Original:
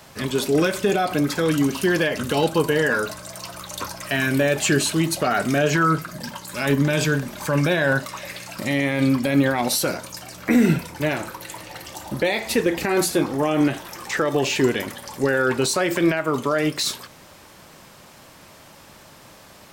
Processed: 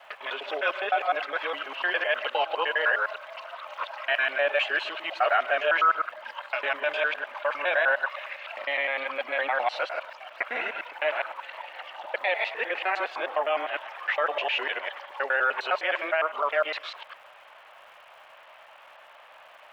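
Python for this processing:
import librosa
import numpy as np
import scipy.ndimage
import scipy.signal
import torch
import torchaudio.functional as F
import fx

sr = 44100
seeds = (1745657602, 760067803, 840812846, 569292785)

y = fx.local_reverse(x, sr, ms=102.0)
y = scipy.signal.sosfilt(scipy.signal.ellip(3, 1.0, 80, [620.0, 3000.0], 'bandpass', fs=sr, output='sos'), y)
y = fx.dmg_crackle(y, sr, seeds[0], per_s=310.0, level_db=-53.0)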